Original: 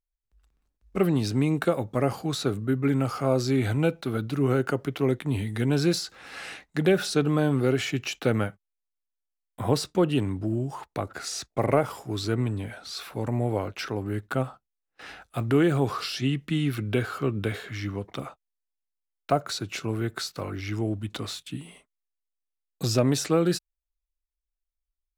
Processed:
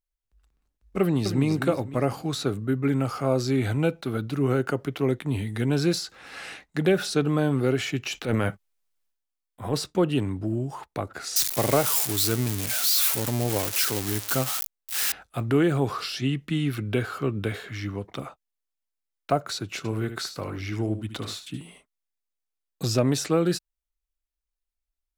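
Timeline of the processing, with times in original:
1–1.5 echo throw 0.25 s, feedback 35%, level -8.5 dB
8.06–9.74 transient shaper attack -9 dB, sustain +10 dB
11.36–15.12 switching spikes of -15 dBFS
19.77–21.61 echo 74 ms -10 dB

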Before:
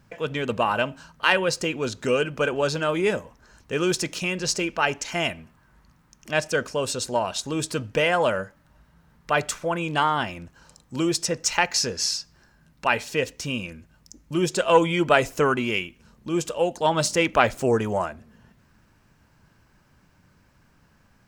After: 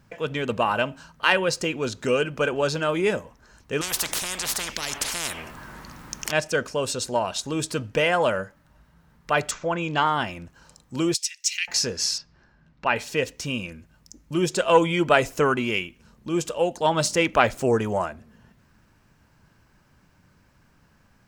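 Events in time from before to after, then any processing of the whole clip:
3.81–6.32 spectral compressor 10:1
9.51–10.06 steep low-pass 7600 Hz 96 dB/oct
11.14–11.68 steep high-pass 2200 Hz
12.18–12.96 air absorption 160 m

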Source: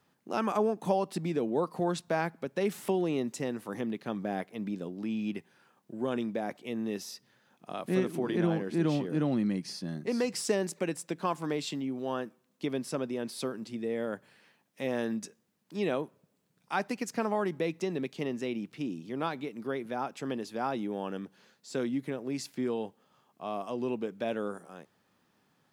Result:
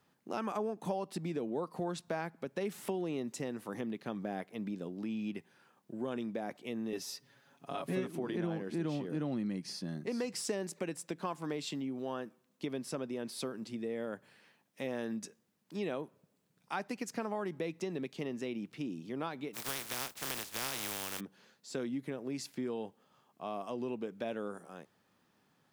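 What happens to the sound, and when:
6.92–8.07 comb 7.2 ms, depth 97%
19.53–21.19 spectral contrast lowered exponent 0.2
whole clip: compressor 2:1, threshold -35 dBFS; gain -1.5 dB

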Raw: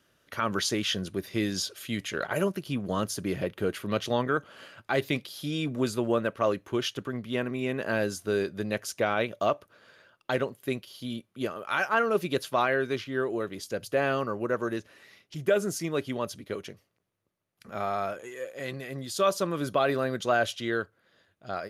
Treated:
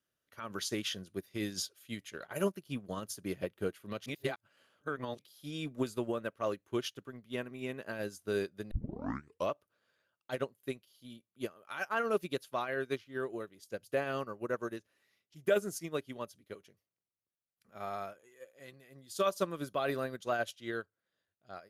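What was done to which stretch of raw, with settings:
4.06–5.19 reverse
8.71 tape start 0.81 s
whole clip: high shelf 8000 Hz +9 dB; limiter -18 dBFS; upward expander 2.5:1, over -37 dBFS

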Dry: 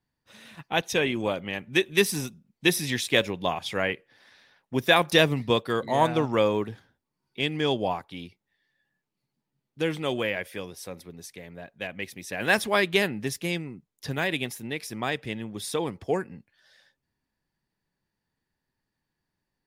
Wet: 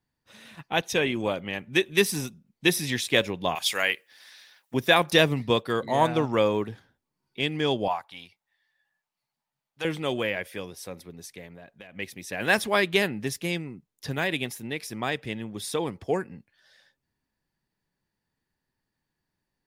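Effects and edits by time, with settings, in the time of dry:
3.55–4.74 tilt +4.5 dB/oct
7.88–9.85 resonant low shelf 520 Hz -12 dB, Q 1.5
11.46–11.96 compressor 10:1, threshold -41 dBFS

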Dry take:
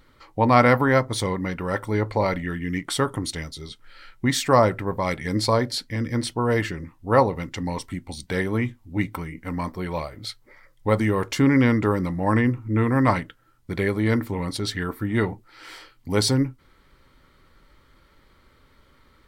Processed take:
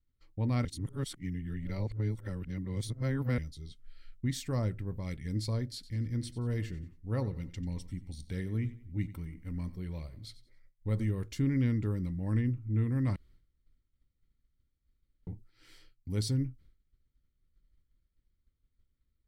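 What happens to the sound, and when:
0.65–3.38 reverse
5.74–11.11 feedback echo 91 ms, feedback 37%, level -16 dB
13.16–15.27 room tone
whole clip: expander -45 dBFS; passive tone stack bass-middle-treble 10-0-1; gain +6 dB

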